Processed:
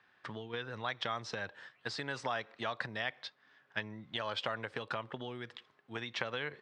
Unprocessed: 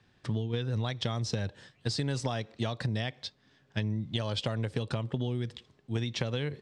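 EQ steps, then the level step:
resonant band-pass 1,400 Hz, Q 1.3
+5.5 dB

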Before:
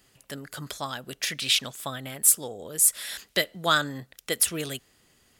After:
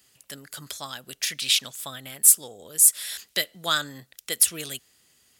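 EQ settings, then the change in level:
high-pass filter 47 Hz
high-shelf EQ 2,300 Hz +11 dB
−6.5 dB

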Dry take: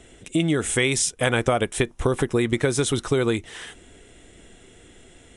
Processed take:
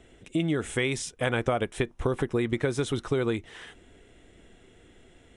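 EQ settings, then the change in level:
parametric band 9,400 Hz −9.5 dB 1.8 octaves
−5.0 dB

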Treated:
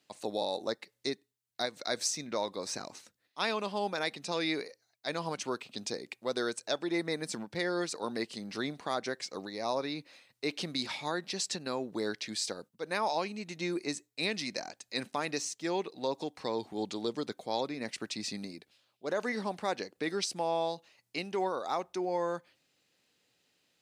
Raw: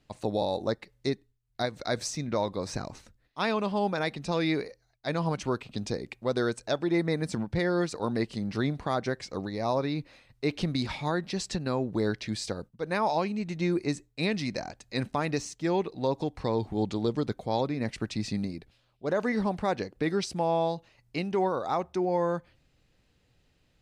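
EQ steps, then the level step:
high-pass filter 250 Hz 12 dB per octave
high-shelf EQ 2,700 Hz +9.5 dB
−5.0 dB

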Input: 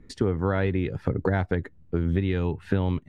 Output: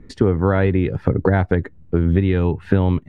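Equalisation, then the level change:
high-shelf EQ 3,300 Hz −9.5 dB
+8.0 dB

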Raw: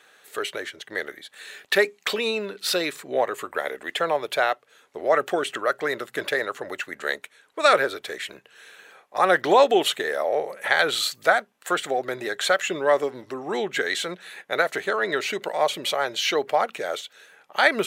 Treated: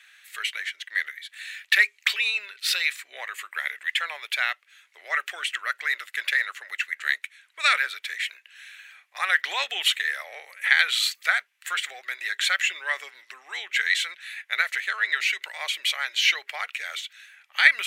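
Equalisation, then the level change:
high-pass with resonance 2,100 Hz, resonance Q 2.6
−1.0 dB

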